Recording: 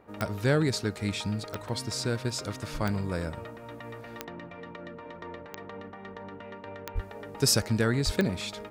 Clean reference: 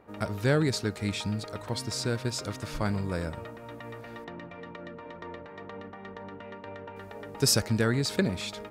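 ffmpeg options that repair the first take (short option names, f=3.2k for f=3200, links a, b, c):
-filter_complex "[0:a]adeclick=t=4,asplit=3[a][b][c];[a]afade=t=out:st=6.94:d=0.02[d];[b]highpass=f=140:w=0.5412,highpass=f=140:w=1.3066,afade=t=in:st=6.94:d=0.02,afade=t=out:st=7.06:d=0.02[e];[c]afade=t=in:st=7.06:d=0.02[f];[d][e][f]amix=inputs=3:normalize=0,asplit=3[g][h][i];[g]afade=t=out:st=8.05:d=0.02[j];[h]highpass=f=140:w=0.5412,highpass=f=140:w=1.3066,afade=t=in:st=8.05:d=0.02,afade=t=out:st=8.17:d=0.02[k];[i]afade=t=in:st=8.17:d=0.02[l];[j][k][l]amix=inputs=3:normalize=0"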